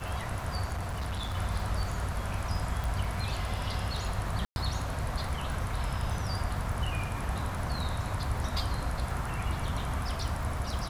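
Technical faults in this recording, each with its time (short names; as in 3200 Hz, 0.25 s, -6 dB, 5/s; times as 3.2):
crackle 70/s -38 dBFS
0.72–1.35 clipped -30 dBFS
2.84 pop
4.45–4.56 gap 0.111 s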